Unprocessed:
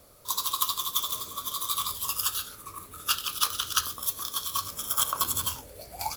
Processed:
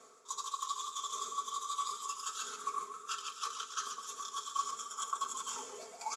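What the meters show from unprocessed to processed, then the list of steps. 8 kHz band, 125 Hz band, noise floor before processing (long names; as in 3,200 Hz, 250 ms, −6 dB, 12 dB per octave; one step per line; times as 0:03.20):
−9.5 dB, below −25 dB, −49 dBFS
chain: reversed playback
downward compressor 6 to 1, threshold −38 dBFS, peak gain reduction 17.5 dB
reversed playback
loudspeaker in its box 340–7,800 Hz, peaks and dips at 400 Hz +8 dB, 590 Hz −6 dB, 1,200 Hz +10 dB, 4,300 Hz −6 dB, 7,000 Hz +10 dB
notch filter 2,900 Hz, Q 22
comb filter 4.5 ms, depth 93%
feedback echo with a swinging delay time 134 ms, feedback 52%, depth 71 cents, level −9.5 dB
level −3.5 dB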